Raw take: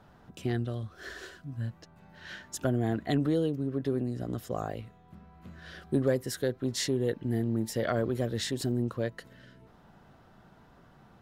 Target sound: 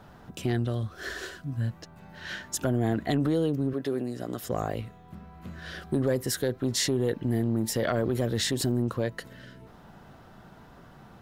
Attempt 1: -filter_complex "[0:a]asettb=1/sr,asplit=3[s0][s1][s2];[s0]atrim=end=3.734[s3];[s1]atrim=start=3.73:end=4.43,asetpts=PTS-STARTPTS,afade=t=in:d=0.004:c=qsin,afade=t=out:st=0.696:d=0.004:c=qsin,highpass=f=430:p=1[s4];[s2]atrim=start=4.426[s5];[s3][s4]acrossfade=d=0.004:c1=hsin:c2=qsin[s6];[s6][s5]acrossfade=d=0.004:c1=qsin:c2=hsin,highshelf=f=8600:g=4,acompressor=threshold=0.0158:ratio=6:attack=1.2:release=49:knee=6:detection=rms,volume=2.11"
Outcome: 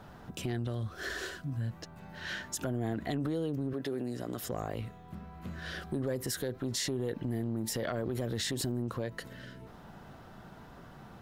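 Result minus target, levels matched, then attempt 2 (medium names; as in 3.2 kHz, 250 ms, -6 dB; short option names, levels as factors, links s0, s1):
compression: peak gain reduction +8 dB
-filter_complex "[0:a]asettb=1/sr,asplit=3[s0][s1][s2];[s0]atrim=end=3.734[s3];[s1]atrim=start=3.73:end=4.43,asetpts=PTS-STARTPTS,afade=t=in:d=0.004:c=qsin,afade=t=out:st=0.696:d=0.004:c=qsin,highpass=f=430:p=1[s4];[s2]atrim=start=4.426[s5];[s3][s4]acrossfade=d=0.004:c1=hsin:c2=qsin[s6];[s6][s5]acrossfade=d=0.004:c1=qsin:c2=hsin,highshelf=f=8600:g=4,acompressor=threshold=0.0473:ratio=6:attack=1.2:release=49:knee=6:detection=rms,volume=2.11"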